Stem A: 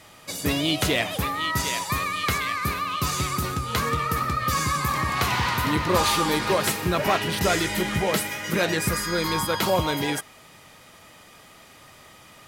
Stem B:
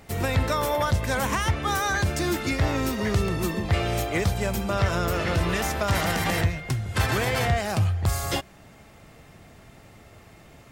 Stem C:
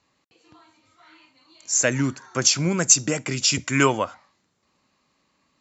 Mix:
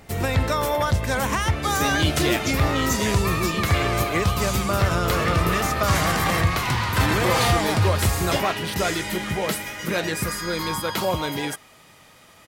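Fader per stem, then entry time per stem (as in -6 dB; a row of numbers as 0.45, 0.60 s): -1.5, +2.0, -16.0 dB; 1.35, 0.00, 0.00 s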